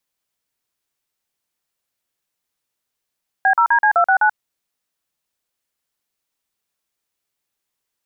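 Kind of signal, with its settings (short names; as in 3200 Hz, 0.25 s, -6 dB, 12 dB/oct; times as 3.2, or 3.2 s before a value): DTMF "B0DC269", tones 84 ms, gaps 43 ms, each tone -13.5 dBFS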